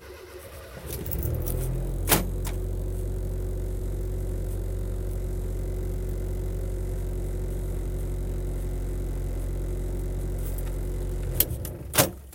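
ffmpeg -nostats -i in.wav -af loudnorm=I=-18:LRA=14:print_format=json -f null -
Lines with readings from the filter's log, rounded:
"input_i" : "-29.9",
"input_tp" : "-2.5",
"input_lra" : "4.1",
"input_thresh" : "-40.1",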